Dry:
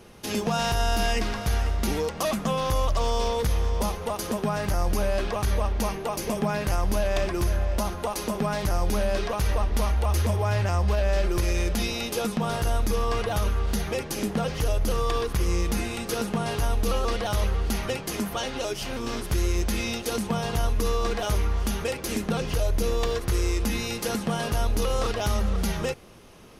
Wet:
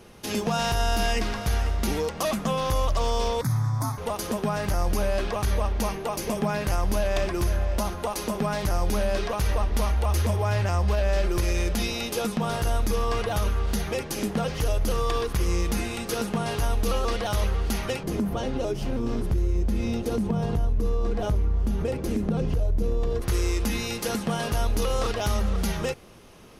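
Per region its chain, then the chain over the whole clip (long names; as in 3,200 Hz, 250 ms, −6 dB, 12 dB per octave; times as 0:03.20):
0:03.41–0:03.98: frequency shifter +61 Hz + phaser with its sweep stopped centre 1,200 Hz, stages 4
0:18.03–0:23.22: tilt shelving filter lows +9 dB, about 720 Hz + downward compressor 3 to 1, threshold −22 dBFS
whole clip: no processing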